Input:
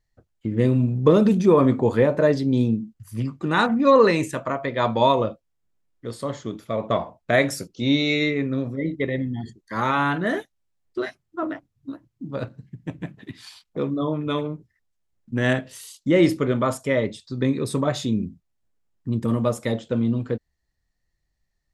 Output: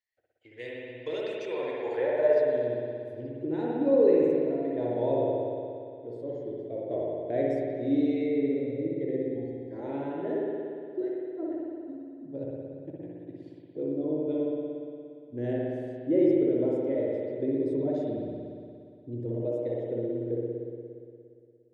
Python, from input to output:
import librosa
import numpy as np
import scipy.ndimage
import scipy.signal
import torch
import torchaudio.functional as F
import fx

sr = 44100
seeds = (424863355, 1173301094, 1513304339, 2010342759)

y = fx.fixed_phaser(x, sr, hz=490.0, stages=4)
y = fx.filter_sweep_bandpass(y, sr, from_hz=2100.0, to_hz=280.0, start_s=1.47, end_s=3.56, q=1.5)
y = fx.rev_spring(y, sr, rt60_s=2.4, pass_ms=(58,), chirp_ms=75, drr_db=-4.0)
y = y * librosa.db_to_amplitude(-2.0)